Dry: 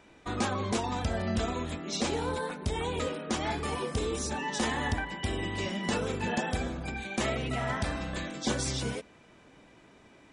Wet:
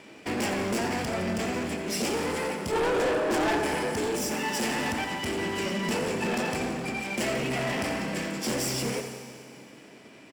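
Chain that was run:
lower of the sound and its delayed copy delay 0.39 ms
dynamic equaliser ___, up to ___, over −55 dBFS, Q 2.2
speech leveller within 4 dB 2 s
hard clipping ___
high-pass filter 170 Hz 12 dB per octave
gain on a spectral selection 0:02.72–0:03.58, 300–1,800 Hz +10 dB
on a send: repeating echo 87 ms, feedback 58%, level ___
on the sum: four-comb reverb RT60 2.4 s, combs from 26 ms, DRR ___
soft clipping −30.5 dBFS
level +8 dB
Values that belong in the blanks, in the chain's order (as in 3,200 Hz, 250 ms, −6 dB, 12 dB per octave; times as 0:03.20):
3,600 Hz, −5 dB, −28 dBFS, −12 dB, 10 dB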